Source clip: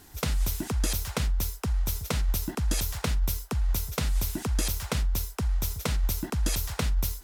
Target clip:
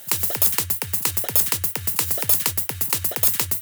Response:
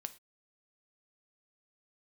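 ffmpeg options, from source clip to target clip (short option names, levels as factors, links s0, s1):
-filter_complex "[0:a]aemphasis=mode=production:type=riaa,asplit=2[s0][s1];[1:a]atrim=start_sample=2205[s2];[s1][s2]afir=irnorm=-1:irlink=0,volume=1.41[s3];[s0][s3]amix=inputs=2:normalize=0,asetrate=88200,aresample=44100,volume=1.12"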